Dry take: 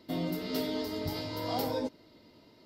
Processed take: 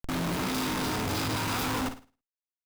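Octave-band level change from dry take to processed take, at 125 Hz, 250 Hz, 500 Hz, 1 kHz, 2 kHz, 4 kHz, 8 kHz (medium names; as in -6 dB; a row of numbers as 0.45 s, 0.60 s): +6.5 dB, +3.0 dB, -1.5 dB, +7.0 dB, +12.0 dB, +5.5 dB, +15.0 dB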